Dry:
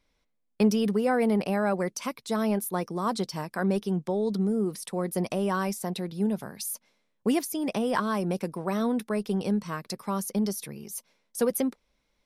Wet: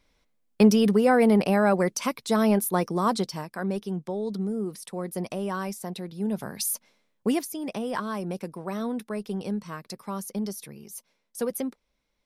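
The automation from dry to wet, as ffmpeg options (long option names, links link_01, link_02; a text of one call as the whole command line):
ffmpeg -i in.wav -af "volume=14dB,afade=type=out:start_time=3:duration=0.49:silence=0.398107,afade=type=in:start_time=6.23:duration=0.38:silence=0.354813,afade=type=out:start_time=6.61:duration=0.96:silence=0.334965" out.wav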